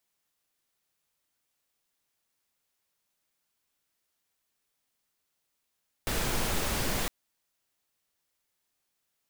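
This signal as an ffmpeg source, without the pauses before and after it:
-f lavfi -i "anoisesrc=c=pink:a=0.172:d=1.01:r=44100:seed=1"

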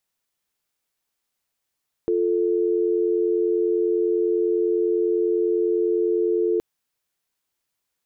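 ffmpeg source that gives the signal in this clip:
-f lavfi -i "aevalsrc='0.0891*(sin(2*PI*350*t)+sin(2*PI*440*t))':d=4.52:s=44100"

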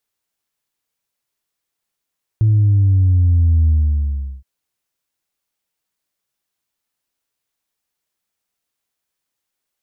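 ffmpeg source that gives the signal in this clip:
-f lavfi -i "aevalsrc='0.316*clip((2.02-t)/0.75,0,1)*tanh(1*sin(2*PI*110*2.02/log(65/110)*(exp(log(65/110)*t/2.02)-1)))/tanh(1)':d=2.02:s=44100"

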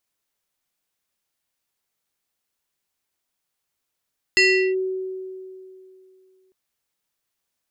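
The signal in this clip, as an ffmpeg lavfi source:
-f lavfi -i "aevalsrc='0.266*pow(10,-3*t/2.7)*sin(2*PI*376*t+1.9*clip(1-t/0.38,0,1)*sin(2*PI*6.23*376*t))':d=2.15:s=44100"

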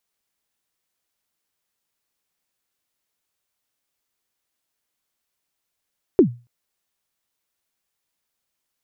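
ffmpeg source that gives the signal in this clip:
-f lavfi -i "aevalsrc='0.562*pow(10,-3*t/0.3)*sin(2*PI*(420*0.097/log(120/420)*(exp(log(120/420)*min(t,0.097)/0.097)-1)+120*max(t-0.097,0)))':d=0.28:s=44100"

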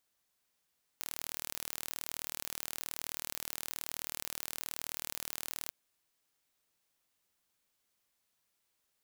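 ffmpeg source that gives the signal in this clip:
-f lavfi -i "aevalsrc='0.266*eq(mod(n,1134),0)':d=4.69:s=44100"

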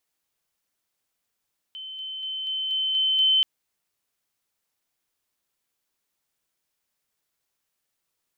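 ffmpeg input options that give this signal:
-f lavfi -i "aevalsrc='pow(10,(-34.5+3*floor(t/0.24))/20)*sin(2*PI*3070*t)':d=1.68:s=44100"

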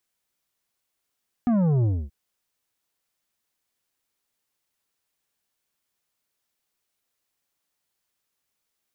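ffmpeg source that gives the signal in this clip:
-f lavfi -i "aevalsrc='0.112*clip((0.63-t)/0.26,0,1)*tanh(2.82*sin(2*PI*250*0.63/log(65/250)*(exp(log(65/250)*t/0.63)-1)))/tanh(2.82)':d=0.63:s=44100"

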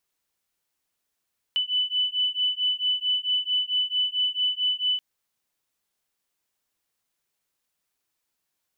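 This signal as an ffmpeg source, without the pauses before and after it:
-f lavfi -i "aevalsrc='0.0531*(sin(2*PI*2990*t)+sin(2*PI*2994.5*t))':d=3.43:s=44100"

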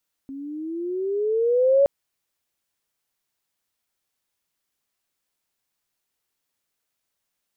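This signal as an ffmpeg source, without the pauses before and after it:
-f lavfi -i "aevalsrc='pow(10,(-12.5+20*(t/1.57-1))/20)*sin(2*PI*268*1.57/(13*log(2)/12)*(exp(13*log(2)/12*t/1.57)-1))':d=1.57:s=44100"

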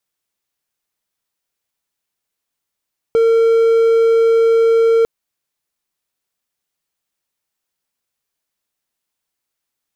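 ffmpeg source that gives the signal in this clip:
-f lavfi -i "aevalsrc='0.447*(1-4*abs(mod(456*t+0.25,1)-0.5))':d=1.9:s=44100"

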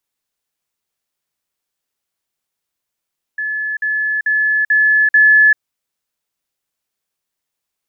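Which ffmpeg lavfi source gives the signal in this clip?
-f lavfi -i "aevalsrc='pow(10,(-18+3*floor(t/0.44))/20)*sin(2*PI*1720*t)*clip(min(mod(t,0.44),0.39-mod(t,0.44))/0.005,0,1)':d=2.2:s=44100"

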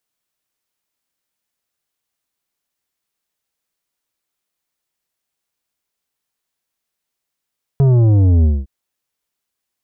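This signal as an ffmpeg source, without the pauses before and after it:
-f lavfi -i "aevalsrc='0.335*clip((0.86-t)/0.22,0,1)*tanh(2.99*sin(2*PI*140*0.86/log(65/140)*(exp(log(65/140)*t/0.86)-1)))/tanh(2.99)':d=0.86:s=44100"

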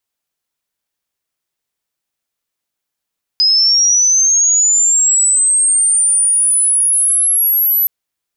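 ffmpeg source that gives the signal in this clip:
-f lavfi -i "aevalsrc='pow(10,(-8-2*t/4.47)/20)*sin(2*PI*(5000*t+7000*t*t/(2*4.47)))':d=4.47:s=44100"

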